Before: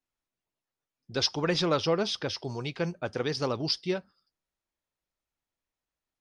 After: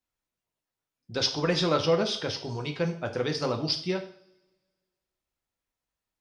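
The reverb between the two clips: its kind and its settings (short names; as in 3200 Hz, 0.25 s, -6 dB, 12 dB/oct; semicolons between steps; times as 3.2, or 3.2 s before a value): two-slope reverb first 0.51 s, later 1.7 s, from -25 dB, DRR 4.5 dB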